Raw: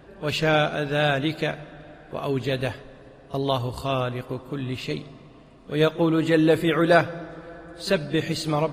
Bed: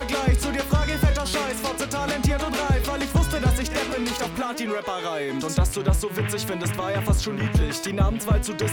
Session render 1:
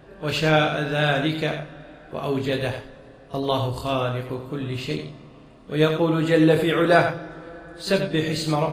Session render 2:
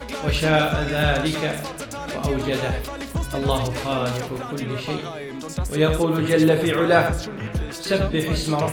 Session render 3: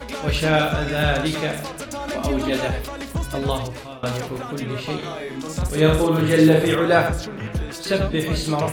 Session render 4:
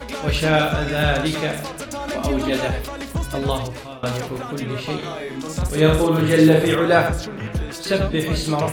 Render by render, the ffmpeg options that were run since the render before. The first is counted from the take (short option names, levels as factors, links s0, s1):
-filter_complex "[0:a]asplit=2[s0][s1];[s1]adelay=26,volume=0.473[s2];[s0][s2]amix=inputs=2:normalize=0,aecho=1:1:89:0.398"
-filter_complex "[1:a]volume=0.531[s0];[0:a][s0]amix=inputs=2:normalize=0"
-filter_complex "[0:a]asettb=1/sr,asplit=3[s0][s1][s2];[s0]atrim=end=1.864[s3];[s1]atrim=start=1.86:end=2.68,asetpts=PTS-STARTPTS,afade=t=in:d=0.004:c=qsin,afade=t=out:st=0.816:d=0.004:c=qsin,aecho=1:1:3.3:0.65,atrim=end_sample=36162[s4];[s2]atrim=start=2.676[s5];[s3][s4]acrossfade=d=0.004:c1=hsin:c2=qsin[s6];[s6][s5]acrossfade=d=0.004:c1=qsin:c2=hsin,asettb=1/sr,asplit=3[s7][s8][s9];[s7]atrim=end=4.984[s10];[s8]atrim=start=4.98:end=6.75,asetpts=PTS-STARTPTS,afade=t=in:d=0.004:c=qsin,afade=t=out:st=1.766:d=0.004:c=qsin,asplit=2[s11][s12];[s12]adelay=45,volume=0.75[s13];[s11][s13]amix=inputs=2:normalize=0,atrim=end_sample=78057[s14];[s9]atrim=start=6.746[s15];[s10][s14]acrossfade=d=0.004:c1=hsin:c2=qsin[s16];[s16][s15]acrossfade=d=0.004:c1=qsin:c2=hsin,asplit=2[s17][s18];[s17]atrim=end=4.03,asetpts=PTS-STARTPTS,afade=t=out:st=3.38:d=0.65:silence=0.0794328[s19];[s18]atrim=start=4.03,asetpts=PTS-STARTPTS,afade=t=in:d=0.004:c=hsin:silence=0.0794328[s20];[s19][s20]concat=n=2:v=0:a=1"
-af "volume=1.12"